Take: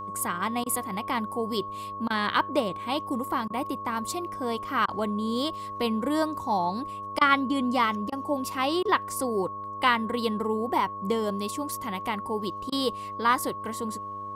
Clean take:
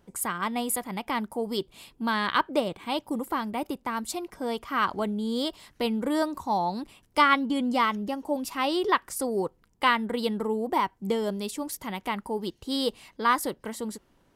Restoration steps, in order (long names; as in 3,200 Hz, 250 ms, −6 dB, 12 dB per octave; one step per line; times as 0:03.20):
hum removal 101 Hz, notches 6
notch filter 1,100 Hz, Q 30
repair the gap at 0:00.64/0:02.08/0:03.48/0:04.86/0:07.19/0:08.10/0:08.83/0:12.70, 21 ms